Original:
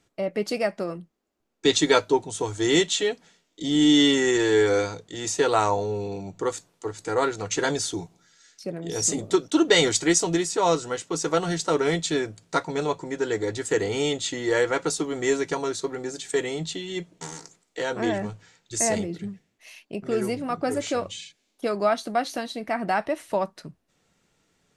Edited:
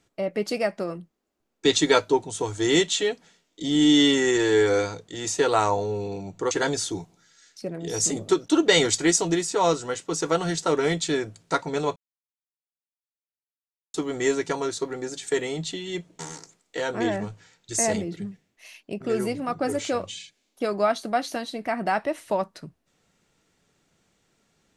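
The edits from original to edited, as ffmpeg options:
ffmpeg -i in.wav -filter_complex "[0:a]asplit=4[link_01][link_02][link_03][link_04];[link_01]atrim=end=6.512[link_05];[link_02]atrim=start=7.528:end=12.98,asetpts=PTS-STARTPTS,afade=type=out:start_time=5.448:duration=0.004:curve=hsin[link_06];[link_03]atrim=start=12.98:end=14.96,asetpts=PTS-STARTPTS,volume=0[link_07];[link_04]atrim=start=14.96,asetpts=PTS-STARTPTS,afade=type=in:duration=0.004:curve=hsin[link_08];[link_06][link_07][link_08]concat=n=3:v=0:a=1[link_09];[link_05][link_09]acrossfade=duration=0.004:curve1=hsin:curve2=hsin" out.wav

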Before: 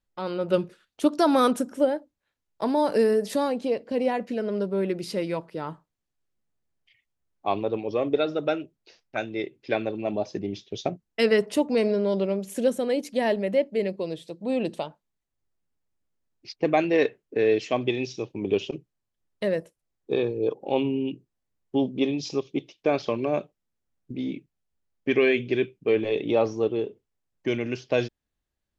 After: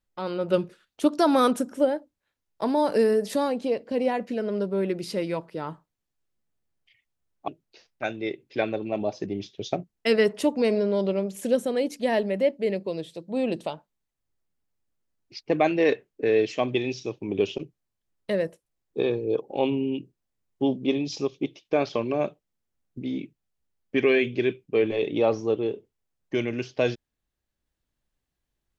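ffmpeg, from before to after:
ffmpeg -i in.wav -filter_complex "[0:a]asplit=2[link_01][link_02];[link_01]atrim=end=7.482[link_03];[link_02]atrim=start=8.608[link_04];[link_03][link_04]acrossfade=duration=0.004:curve1=hsin:curve2=hsin" out.wav

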